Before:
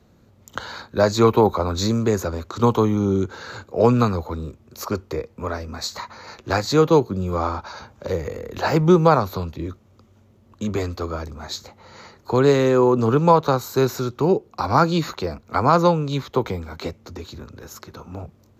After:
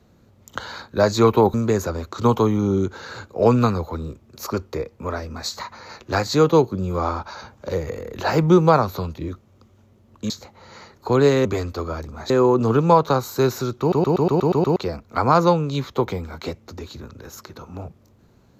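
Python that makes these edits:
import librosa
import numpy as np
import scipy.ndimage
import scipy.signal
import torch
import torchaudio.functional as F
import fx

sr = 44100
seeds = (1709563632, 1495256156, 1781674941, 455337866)

y = fx.edit(x, sr, fx.cut(start_s=1.54, length_s=0.38),
    fx.move(start_s=10.68, length_s=0.85, to_s=12.68),
    fx.stutter_over(start_s=14.18, slice_s=0.12, count=8), tone=tone)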